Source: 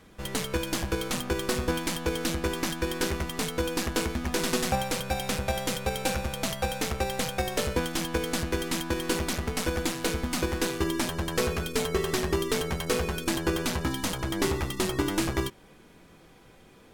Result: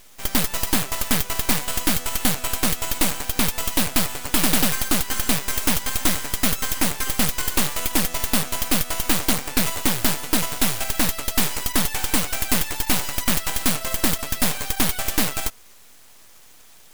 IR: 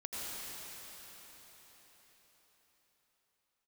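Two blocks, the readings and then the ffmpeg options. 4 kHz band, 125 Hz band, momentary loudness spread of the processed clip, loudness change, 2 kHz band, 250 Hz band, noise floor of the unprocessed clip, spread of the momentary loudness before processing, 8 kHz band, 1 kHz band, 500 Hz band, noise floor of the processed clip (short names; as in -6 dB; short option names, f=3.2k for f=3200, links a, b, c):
+7.0 dB, +1.5 dB, 2 LU, +7.5 dB, +5.5 dB, +3.5 dB, -54 dBFS, 2 LU, +11.0 dB, +4.0 dB, -3.5 dB, -47 dBFS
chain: -af "aexciter=amount=9.2:drive=9.6:freq=2.3k,aeval=exprs='abs(val(0))':c=same,volume=-9.5dB"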